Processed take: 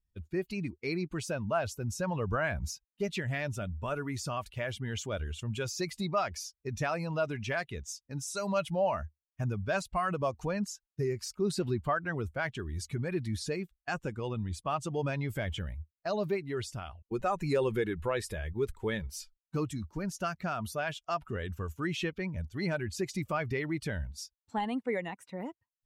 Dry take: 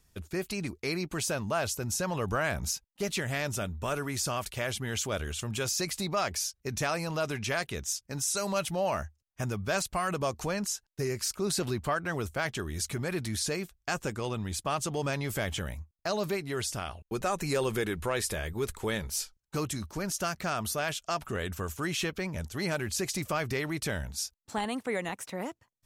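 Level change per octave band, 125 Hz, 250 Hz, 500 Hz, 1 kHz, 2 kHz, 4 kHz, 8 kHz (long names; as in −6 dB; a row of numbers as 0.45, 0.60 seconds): 0.0, −0.5, −0.5, −1.5, −3.0, −7.0, −10.5 decibels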